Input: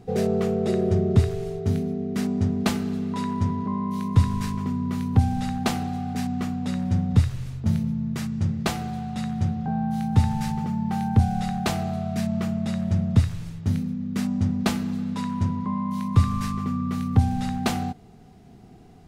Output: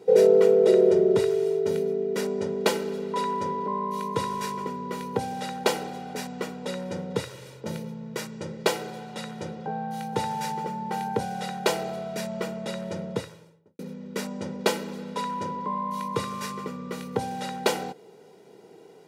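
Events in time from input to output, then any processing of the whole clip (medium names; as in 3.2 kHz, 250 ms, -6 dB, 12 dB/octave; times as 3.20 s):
12.98–13.79 s: studio fade out
whole clip: high-pass 210 Hz 24 dB/octave; peaking EQ 520 Hz +8.5 dB 0.7 oct; comb 2.1 ms, depth 72%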